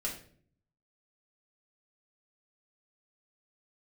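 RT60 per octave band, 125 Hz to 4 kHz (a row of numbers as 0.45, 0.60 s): 0.95, 0.80, 0.60, 0.40, 0.45, 0.40 s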